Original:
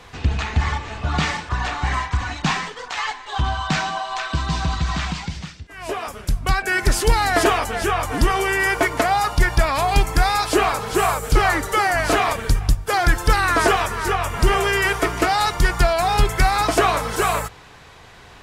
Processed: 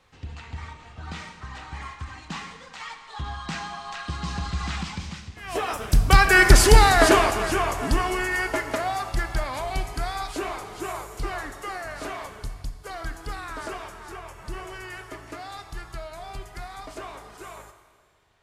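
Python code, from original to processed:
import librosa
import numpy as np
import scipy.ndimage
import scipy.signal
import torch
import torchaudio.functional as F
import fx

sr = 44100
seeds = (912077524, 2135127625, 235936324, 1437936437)

y = fx.doppler_pass(x, sr, speed_mps=20, closest_m=9.7, pass_at_s=6.37)
y = fx.rev_schroeder(y, sr, rt60_s=1.7, comb_ms=27, drr_db=9.0)
y = y * librosa.db_to_amplitude(5.0)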